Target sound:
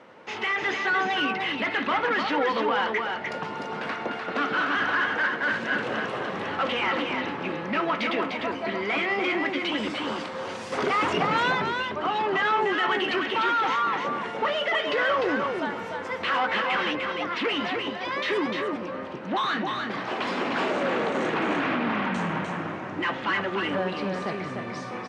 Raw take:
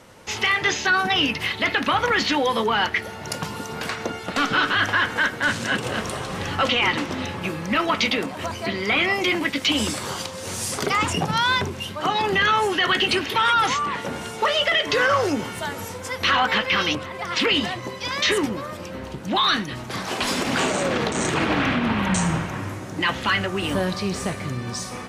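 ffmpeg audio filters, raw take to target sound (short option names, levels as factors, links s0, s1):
-filter_complex "[0:a]asettb=1/sr,asplit=3[s0][s1][s2];[s0]atrim=end=10.724[s3];[s1]atrim=start=10.72:end=11.52,asetpts=PTS-STARTPTS,afade=t=in:d=0.004:c=qsin,afade=t=out:st=0.796:d=0.004:c=qsin,acontrast=78[s4];[s2]atrim=start=11.516[s5];[s3][s4]acrossfade=d=0.004:c1=hsin:c2=qsin[s6];[s6][s5]acrossfade=d=0.004:c1=qsin:c2=hsin,asoftclip=type=tanh:threshold=0.1,highpass=240,lowpass=2400,aecho=1:1:300:0.596"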